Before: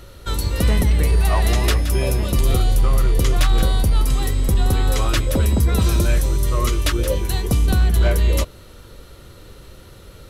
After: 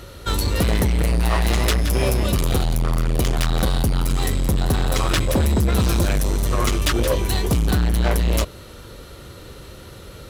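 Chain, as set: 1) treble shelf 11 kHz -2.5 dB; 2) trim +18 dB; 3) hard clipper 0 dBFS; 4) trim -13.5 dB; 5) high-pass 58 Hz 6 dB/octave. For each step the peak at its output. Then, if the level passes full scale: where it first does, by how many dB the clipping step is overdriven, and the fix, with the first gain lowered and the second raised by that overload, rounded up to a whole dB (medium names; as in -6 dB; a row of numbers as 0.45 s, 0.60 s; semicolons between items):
-9.0 dBFS, +9.0 dBFS, 0.0 dBFS, -13.5 dBFS, -8.0 dBFS; step 2, 9.0 dB; step 2 +9 dB, step 4 -4.5 dB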